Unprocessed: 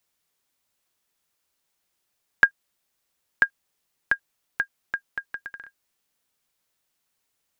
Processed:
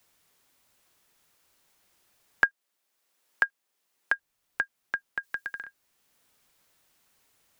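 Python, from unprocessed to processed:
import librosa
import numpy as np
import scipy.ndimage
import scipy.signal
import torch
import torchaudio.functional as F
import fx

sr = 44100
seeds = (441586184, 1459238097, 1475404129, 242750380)

y = fx.highpass(x, sr, hz=260.0, slope=12, at=(2.45, 4.12))
y = fx.high_shelf(y, sr, hz=3200.0, db=9.0, at=(5.23, 5.63))
y = fx.band_squash(y, sr, depth_pct=40)
y = F.gain(torch.from_numpy(y), -1.5).numpy()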